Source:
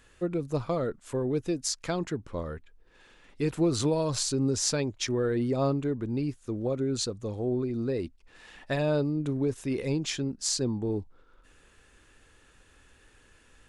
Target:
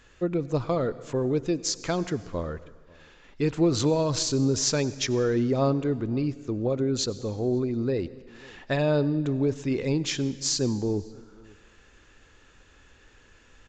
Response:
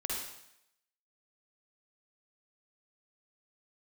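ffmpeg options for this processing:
-filter_complex "[0:a]asplit=2[s0][s1];[s1]adelay=542.3,volume=0.0562,highshelf=f=4000:g=-12.2[s2];[s0][s2]amix=inputs=2:normalize=0,asplit=2[s3][s4];[1:a]atrim=start_sample=2205,asetrate=24696,aresample=44100[s5];[s4][s5]afir=irnorm=-1:irlink=0,volume=0.0708[s6];[s3][s6]amix=inputs=2:normalize=0,aresample=16000,aresample=44100,volume=1.33"

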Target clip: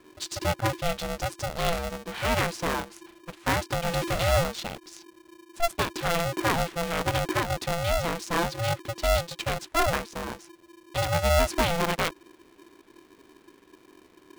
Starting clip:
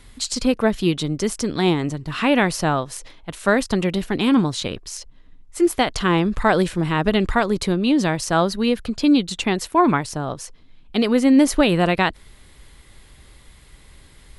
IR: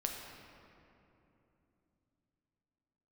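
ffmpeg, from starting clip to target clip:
-filter_complex "[0:a]asettb=1/sr,asplit=3[s0][s1][s2];[s0]atrim=end=3.884[s3];[s1]atrim=start=3.88:end=4.44,asetpts=PTS-STARTPTS,afade=t=in:d=0.004:c=qsin,afade=t=out:st=0.556:d=0.004:c=qsin,aeval=exprs='val(0)+0.5*0.0944*sgn(val(0))':c=same[s4];[s2]atrim=start=4.436[s5];[s3][s4]acrossfade=d=0.004:c1=hsin:c2=qsin[s6];[s6][s5]acrossfade=d=0.004:c1=qsin:c2=hsin,adynamicsmooth=sensitivity=5.5:basefreq=2700,aeval=exprs='val(0)*sgn(sin(2*PI*340*n/s))':c=same,volume=0.398"

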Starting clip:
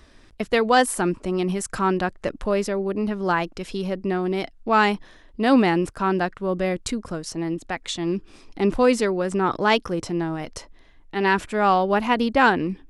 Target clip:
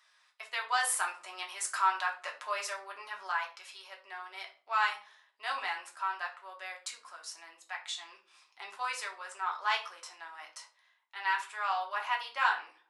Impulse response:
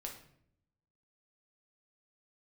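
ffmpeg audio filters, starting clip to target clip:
-filter_complex "[0:a]highpass=f=950:w=0.5412,highpass=f=950:w=1.3066,asplit=3[s0][s1][s2];[s0]afade=t=out:st=0.81:d=0.02[s3];[s1]acontrast=49,afade=t=in:st=0.81:d=0.02,afade=t=out:st=3.26:d=0.02[s4];[s2]afade=t=in:st=3.26:d=0.02[s5];[s3][s4][s5]amix=inputs=3:normalize=0[s6];[1:a]atrim=start_sample=2205,asetrate=83790,aresample=44100[s7];[s6][s7]afir=irnorm=-1:irlink=0"

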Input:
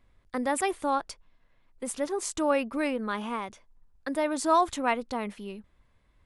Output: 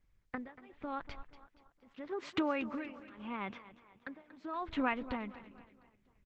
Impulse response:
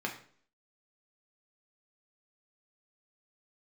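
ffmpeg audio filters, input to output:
-filter_complex "[0:a]asplit=3[s0][s1][s2];[s0]afade=t=out:st=1.88:d=0.02[s3];[s1]highpass=f=130:w=0.5412,highpass=f=130:w=1.3066,afade=t=in:st=1.88:d=0.02,afade=t=out:st=4.53:d=0.02[s4];[s2]afade=t=in:st=4.53:d=0.02[s5];[s3][s4][s5]amix=inputs=3:normalize=0,agate=range=0.112:threshold=0.00251:ratio=16:detection=peak,lowpass=f=2800:w=0.5412,lowpass=f=2800:w=1.3066,equalizer=f=610:t=o:w=2.4:g=-10.5,acompressor=threshold=0.00891:ratio=20,tremolo=f=0.82:d=0.97,aecho=1:1:236|472|708|944:0.178|0.0836|0.0393|0.0185,volume=4.22" -ar 48000 -c:a libopus -b:a 12k

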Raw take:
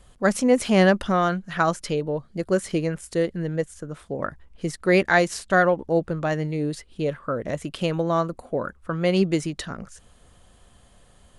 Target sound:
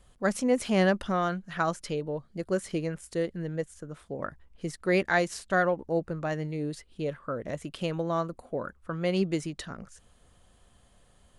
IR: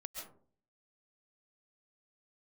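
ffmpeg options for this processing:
-filter_complex "[0:a]asettb=1/sr,asplit=3[s0][s1][s2];[s0]atrim=end=5.714[s3];[s1]atrim=start=5.71:end=6.29,asetpts=PTS-STARTPTS,afade=t=in:d=0.004:c=qsin,afade=t=out:st=0.576:d=0.004:c=qsin,equalizer=f=3300:w=6.1:g=-8[s4];[s2]atrim=start=6.286[s5];[s3][s4]acrossfade=d=0.004:c1=hsin:c2=qsin[s6];[s6][s5]acrossfade=d=0.004:c1=qsin:c2=hsin,volume=0.473"

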